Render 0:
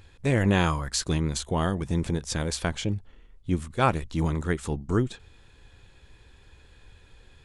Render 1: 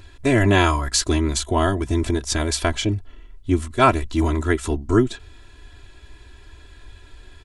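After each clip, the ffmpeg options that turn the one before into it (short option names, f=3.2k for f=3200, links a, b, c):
-af "aecho=1:1:3:0.92,volume=5dB"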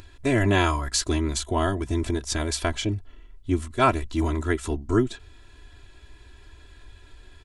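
-af "acompressor=mode=upward:threshold=-39dB:ratio=2.5,volume=-4.5dB"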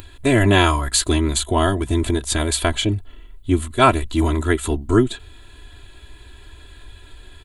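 -af "aexciter=amount=1.3:drive=2.6:freq=3k,volume=6dB"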